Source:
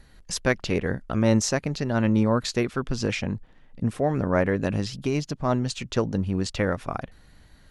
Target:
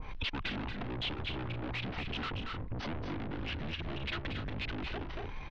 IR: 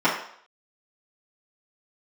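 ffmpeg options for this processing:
-af "atempo=1.4,alimiter=limit=-18.5dB:level=0:latency=1:release=29,asetrate=24046,aresample=44100,atempo=1.83401,aeval=exprs='(tanh(50.1*val(0)+0.55)-tanh(0.55))/50.1':c=same,dynaudnorm=f=170:g=3:m=11.5dB,aeval=exprs='0.188*sin(PI/2*3.16*val(0)/0.188)':c=same,lowpass=f=3.6k:w=0.5412,lowpass=f=3.6k:w=1.3066,aecho=1:1:230.3|265.3:0.501|0.251,acompressor=threshold=-37dB:ratio=16,adynamicequalizer=threshold=0.00126:dfrequency=2100:dqfactor=0.7:tfrequency=2100:tqfactor=0.7:attack=5:release=100:ratio=0.375:range=3:mode=boostabove:tftype=highshelf,volume=1dB"

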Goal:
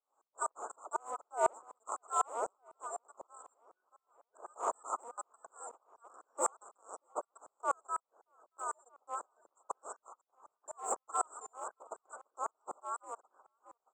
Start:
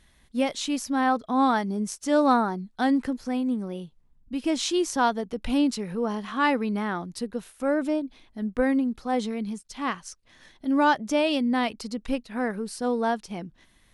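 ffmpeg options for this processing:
-filter_complex "[0:a]afftfilt=real='real(if(lt(b,272),68*(eq(floor(b/68),0)*3+eq(floor(b/68),1)*2+eq(floor(b/68),2)*1+eq(floor(b/68),3)*0)+mod(b,68),b),0)':imag='imag(if(lt(b,272),68*(eq(floor(b/68),0)*3+eq(floor(b/68),1)*2+eq(floor(b/68),2)*1+eq(floor(b/68),3)*0)+mod(b,68),b),0)':win_size=2048:overlap=0.75,aresample=16000,aeval=exprs='0.0794*(abs(mod(val(0)/0.0794+3,4)-2)-1)':c=same,aresample=44100,asuperstop=centerf=3300:order=20:qfactor=0.51,asplit=2[a][b];[b]asoftclip=type=hard:threshold=-33dB,volume=-7dB[c];[a][c]amix=inputs=2:normalize=0,highpass=f=440:w=0.5412,highpass=f=440:w=1.3066,asplit=2[d][e];[e]adelay=627,lowpass=f=4.6k:p=1,volume=-23dB,asplit=2[f][g];[g]adelay=627,lowpass=f=4.6k:p=1,volume=0.45,asplit=2[h][i];[i]adelay=627,lowpass=f=4.6k:p=1,volume=0.45[j];[d][f][h][j]amix=inputs=4:normalize=0,aeval=exprs='val(0)*pow(10,-38*if(lt(mod(-4*n/s,1),2*abs(-4)/1000),1-mod(-4*n/s,1)/(2*abs(-4)/1000),(mod(-4*n/s,1)-2*abs(-4)/1000)/(1-2*abs(-4)/1000))/20)':c=same,volume=9.5dB"

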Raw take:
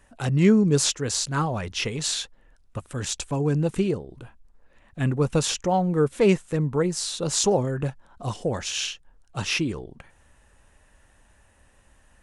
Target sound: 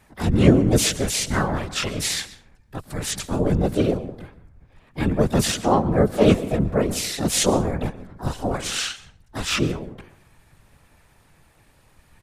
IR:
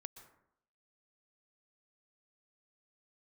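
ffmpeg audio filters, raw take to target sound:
-filter_complex "[0:a]asplit=2[a][b];[1:a]atrim=start_sample=2205[c];[b][c]afir=irnorm=-1:irlink=0,volume=7.5dB[d];[a][d]amix=inputs=2:normalize=0,afftfilt=real='hypot(re,im)*cos(2*PI*random(0))':imag='hypot(re,im)*sin(2*PI*random(1))':win_size=512:overlap=0.75,asplit=4[e][f][g][h];[f]asetrate=22050,aresample=44100,atempo=2,volume=-4dB[i];[g]asetrate=29433,aresample=44100,atempo=1.49831,volume=-12dB[j];[h]asetrate=58866,aresample=44100,atempo=0.749154,volume=-2dB[k];[e][i][j][k]amix=inputs=4:normalize=0,volume=-1.5dB"

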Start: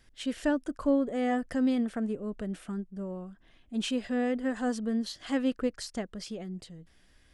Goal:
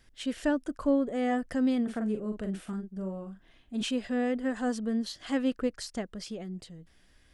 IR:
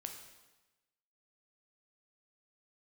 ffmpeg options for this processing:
-filter_complex "[0:a]asettb=1/sr,asplit=3[a][b][c];[a]atrim=end=1.834[d];[b]atrim=start=1.83:end=3.83,asetpts=PTS-STARTPTS,afade=t=in:d=0.004:c=qsin,afade=t=out:st=1.996:d=0.004:c=qsin,asplit=2[e][f];[f]adelay=42,volume=-6dB[g];[e][g]amix=inputs=2:normalize=0,atrim=end_sample=88200[h];[c]atrim=start=3.826[i];[d][h]acrossfade=d=0.004:c1=hsin:c2=qsin[j];[j][i]acrossfade=d=0.004:c1=qsin:c2=hsin"

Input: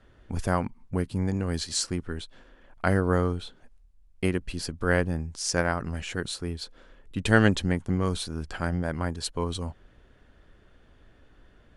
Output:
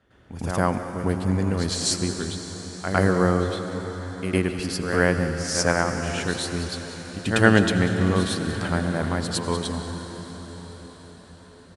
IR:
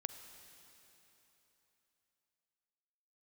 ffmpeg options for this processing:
-filter_complex "[0:a]highpass=78,aecho=1:1:190:0.158,asplit=2[a][b];[1:a]atrim=start_sample=2205,asetrate=23373,aresample=44100,adelay=106[c];[b][c]afir=irnorm=-1:irlink=0,volume=7.5dB[d];[a][d]amix=inputs=2:normalize=0,volume=-4.5dB"

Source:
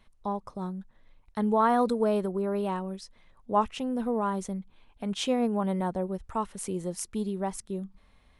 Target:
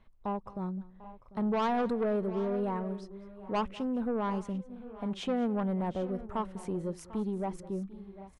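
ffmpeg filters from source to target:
-af "lowpass=f=1.3k:p=1,asoftclip=type=tanh:threshold=-25dB,aecho=1:1:204|745|786:0.1|0.126|0.133"

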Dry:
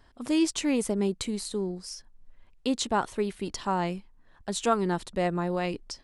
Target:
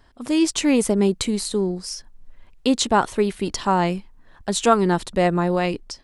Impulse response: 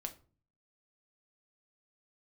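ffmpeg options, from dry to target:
-af "dynaudnorm=f=190:g=5:m=5dB,volume=3.5dB"

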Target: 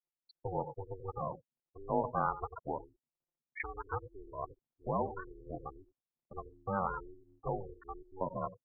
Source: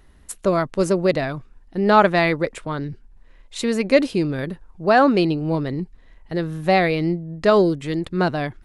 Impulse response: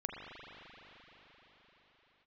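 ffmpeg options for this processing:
-filter_complex "[0:a]lowpass=f=3.3k:p=1,asplit=2[a][b];[b]adelay=90,highpass=300,lowpass=3.4k,asoftclip=type=hard:threshold=-12dB,volume=-11dB[c];[a][c]amix=inputs=2:normalize=0,asetrate=22696,aresample=44100,atempo=1.94306,acompressor=threshold=-21dB:ratio=8,afftfilt=real='re*gte(hypot(re,im),0.0631)':imag='im*gte(hypot(re,im),0.0631)':win_size=1024:overlap=0.75,highpass=680,aeval=exprs='val(0)*sin(2*PI*190*n/s)':c=same,volume=3.5dB"

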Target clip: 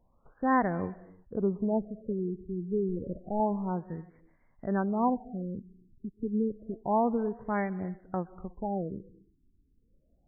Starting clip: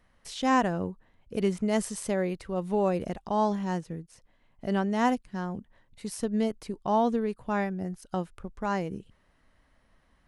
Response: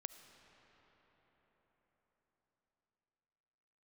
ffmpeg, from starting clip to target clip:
-filter_complex "[0:a]asettb=1/sr,asplit=3[a][b][c];[a]atrim=end=2.894[d];[b]atrim=start=2.89:end=3.4,asetpts=PTS-STARTPTS,afade=t=in:d=0.004:c=qsin,afade=t=out:st=0.506:d=0.004:c=qsin,aeval=exprs='clip(val(0),-1,0.0178)':c=same[e];[c]atrim=start=3.396[f];[d][e]acrossfade=d=0.004:c1=hsin:c2=qsin[g];[g][f]acrossfade=d=0.004:c1=qsin:c2=hsin,asplit=2[h][i];[1:a]atrim=start_sample=2205,afade=t=out:st=0.25:d=0.01,atrim=end_sample=11466,asetrate=26019,aresample=44100[j];[i][j]afir=irnorm=-1:irlink=0,volume=-1.5dB[k];[h][k]amix=inputs=2:normalize=0,afftfilt=real='re*lt(b*sr/1024,420*pow(2400/420,0.5+0.5*sin(2*PI*0.29*pts/sr)))':imag='im*lt(b*sr/1024,420*pow(2400/420,0.5+0.5*sin(2*PI*0.29*pts/sr)))':win_size=1024:overlap=0.75,volume=-6dB"

